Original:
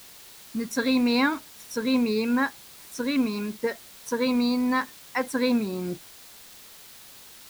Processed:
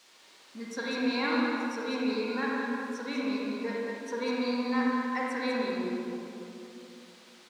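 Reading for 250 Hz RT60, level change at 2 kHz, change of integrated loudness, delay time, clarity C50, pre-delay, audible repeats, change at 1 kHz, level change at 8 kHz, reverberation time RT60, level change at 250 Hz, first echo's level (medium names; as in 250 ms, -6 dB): 3.2 s, -3.0 dB, -5.0 dB, 197 ms, -3.5 dB, 37 ms, 1, -2.0 dB, -11.0 dB, 2.8 s, -6.0 dB, -6.5 dB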